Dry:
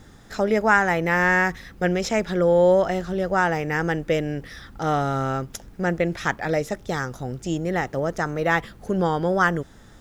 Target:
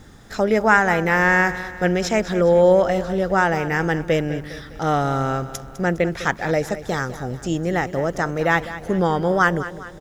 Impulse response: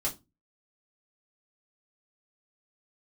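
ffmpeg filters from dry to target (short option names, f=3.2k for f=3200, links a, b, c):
-af "aecho=1:1:204|408|612|816|1020:0.2|0.0958|0.046|0.0221|0.0106,volume=2.5dB"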